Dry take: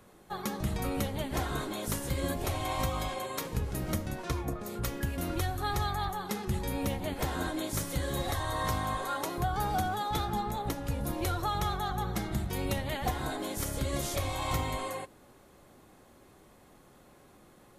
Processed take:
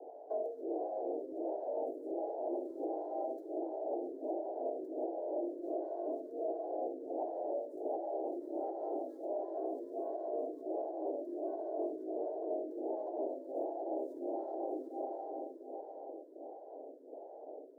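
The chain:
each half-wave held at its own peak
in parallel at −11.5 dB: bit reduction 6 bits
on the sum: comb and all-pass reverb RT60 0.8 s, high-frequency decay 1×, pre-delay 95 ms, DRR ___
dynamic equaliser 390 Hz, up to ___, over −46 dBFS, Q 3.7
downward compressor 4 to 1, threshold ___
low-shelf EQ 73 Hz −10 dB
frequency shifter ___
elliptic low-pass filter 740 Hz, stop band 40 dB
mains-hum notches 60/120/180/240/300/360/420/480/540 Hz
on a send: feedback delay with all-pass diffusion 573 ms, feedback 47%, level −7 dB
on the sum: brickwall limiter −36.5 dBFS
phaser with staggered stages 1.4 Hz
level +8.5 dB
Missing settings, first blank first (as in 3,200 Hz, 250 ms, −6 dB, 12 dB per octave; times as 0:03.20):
9 dB, +6 dB, −39 dBFS, +260 Hz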